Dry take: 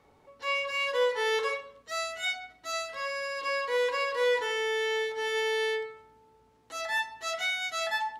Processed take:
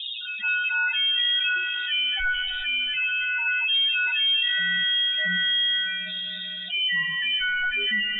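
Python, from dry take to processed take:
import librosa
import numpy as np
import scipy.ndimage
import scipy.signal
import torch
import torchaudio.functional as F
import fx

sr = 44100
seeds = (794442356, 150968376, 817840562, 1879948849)

y = fx.env_lowpass_down(x, sr, base_hz=2800.0, full_db=-24.0)
y = fx.low_shelf(y, sr, hz=87.0, db=8.0)
y = y + 0.75 * np.pad(y, (int(6.3 * sr / 1000.0), 0))[:len(y)]
y = 10.0 ** (-20.5 / 20.0) * np.tanh(y / 10.0 ** (-20.5 / 20.0))
y = fx.harmonic_tremolo(y, sr, hz=1.6, depth_pct=70, crossover_hz=1300.0)
y = fx.spec_topn(y, sr, count=8)
y = fx.air_absorb(y, sr, metres=140.0)
y = fx.rev_schroeder(y, sr, rt60_s=3.7, comb_ms=26, drr_db=14.0)
y = fx.freq_invert(y, sr, carrier_hz=3700)
y = fx.env_flatten(y, sr, amount_pct=70)
y = F.gain(torch.from_numpy(y), 3.5).numpy()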